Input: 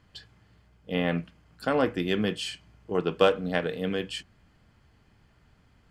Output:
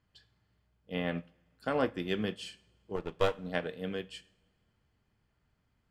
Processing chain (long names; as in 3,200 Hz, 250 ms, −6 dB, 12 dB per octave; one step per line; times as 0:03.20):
0:02.96–0:03.38: gain on one half-wave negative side −12 dB
coupled-rooms reverb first 0.52 s, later 2.4 s, from −19 dB, DRR 13 dB
expander for the loud parts 1.5 to 1, over −41 dBFS
level −3.5 dB